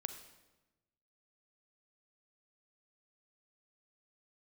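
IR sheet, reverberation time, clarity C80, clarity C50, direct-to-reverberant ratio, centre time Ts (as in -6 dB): 1.1 s, 11.0 dB, 9.0 dB, 8.5 dB, 15 ms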